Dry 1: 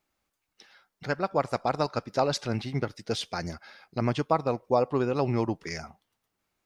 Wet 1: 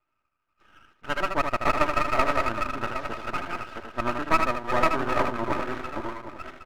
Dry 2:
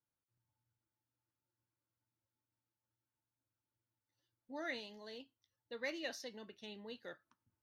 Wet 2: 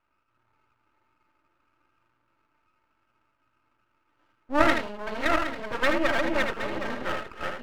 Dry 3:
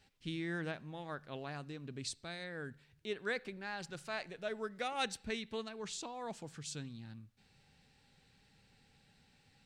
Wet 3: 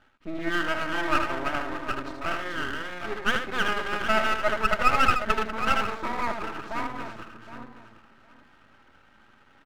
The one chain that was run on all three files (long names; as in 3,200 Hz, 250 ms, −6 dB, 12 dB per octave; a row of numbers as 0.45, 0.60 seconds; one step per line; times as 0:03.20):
feedback delay that plays each chunk backwards 383 ms, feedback 41%, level −2 dB
low-pass with resonance 1,300 Hz, resonance Q 6.4
low-shelf EQ 140 Hz −9.5 dB
comb filter 3.2 ms, depth 63%
single-tap delay 78 ms −6 dB
half-wave rectification
loudness normalisation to −27 LKFS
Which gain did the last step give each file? −2.5, +19.0, +11.5 decibels